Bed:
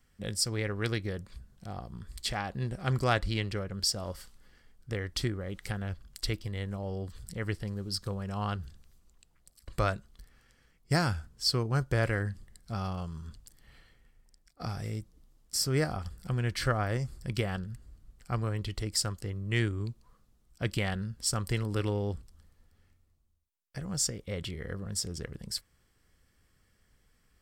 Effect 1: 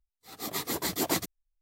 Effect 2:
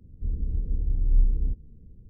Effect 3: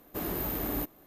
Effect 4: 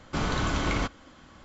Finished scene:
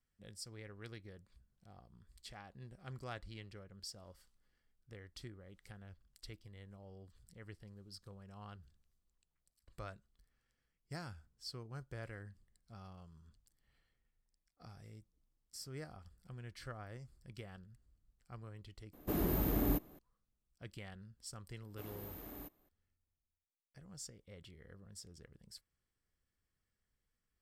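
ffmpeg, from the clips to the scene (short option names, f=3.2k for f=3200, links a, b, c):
-filter_complex "[3:a]asplit=2[a][b];[0:a]volume=-19dB[c];[a]lowshelf=f=410:g=10[d];[c]asplit=2[e][f];[e]atrim=end=18.934[g];[d]atrim=end=1.06,asetpts=PTS-STARTPTS,volume=-6dB[h];[f]atrim=start=19.986[i];[b]atrim=end=1.06,asetpts=PTS-STARTPTS,volume=-17.5dB,afade=t=in:d=0.004:c=hsin,afade=t=out:st=1.056:d=0.004:c=hsin,adelay=21630[j];[g][h]acrossfade=d=0.004:c1=hsin:c2=hsin[k];[k][i]acrossfade=d=0.004:c1=hsin:c2=hsin[l];[l][j]amix=inputs=2:normalize=0"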